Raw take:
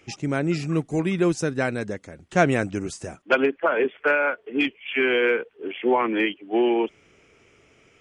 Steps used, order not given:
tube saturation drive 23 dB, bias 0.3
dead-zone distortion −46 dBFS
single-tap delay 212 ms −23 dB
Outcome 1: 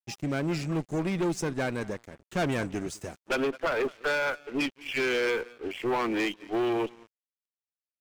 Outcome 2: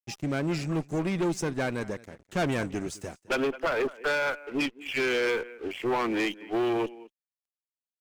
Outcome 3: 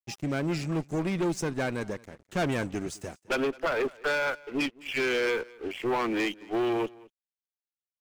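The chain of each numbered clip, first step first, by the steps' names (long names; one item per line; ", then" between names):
single-tap delay, then tube saturation, then dead-zone distortion
dead-zone distortion, then single-tap delay, then tube saturation
tube saturation, then dead-zone distortion, then single-tap delay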